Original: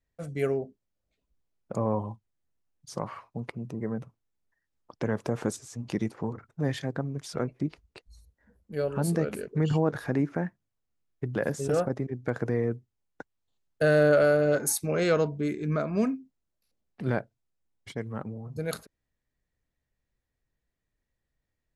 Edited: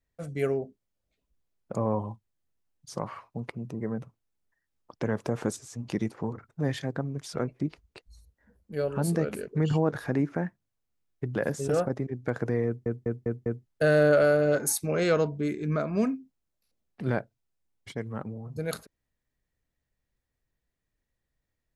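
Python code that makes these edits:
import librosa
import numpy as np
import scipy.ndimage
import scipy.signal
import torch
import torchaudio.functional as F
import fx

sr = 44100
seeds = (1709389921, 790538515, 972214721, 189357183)

y = fx.edit(x, sr, fx.stutter_over(start_s=12.66, slice_s=0.2, count=5), tone=tone)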